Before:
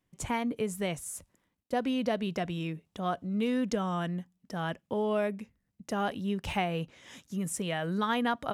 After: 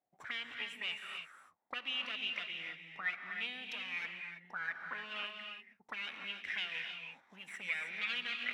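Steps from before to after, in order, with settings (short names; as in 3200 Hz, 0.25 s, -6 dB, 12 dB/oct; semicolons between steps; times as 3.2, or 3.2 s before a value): minimum comb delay 0.52 ms; auto-wah 700–2800 Hz, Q 9.3, up, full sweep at -29 dBFS; non-linear reverb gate 0.34 s rising, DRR 4 dB; gain +11 dB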